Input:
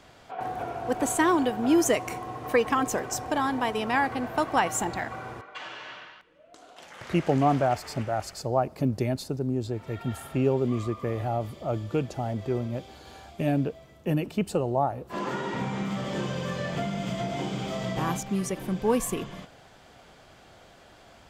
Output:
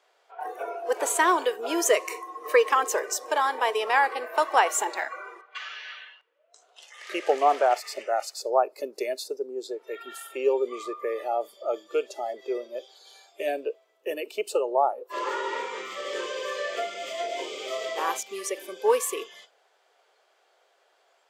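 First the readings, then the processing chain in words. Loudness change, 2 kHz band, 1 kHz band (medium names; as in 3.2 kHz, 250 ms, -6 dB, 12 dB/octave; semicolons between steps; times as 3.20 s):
+1.0 dB, +3.5 dB, +3.0 dB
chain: elliptic high-pass 410 Hz, stop band 80 dB; spectral noise reduction 15 dB; trim +4 dB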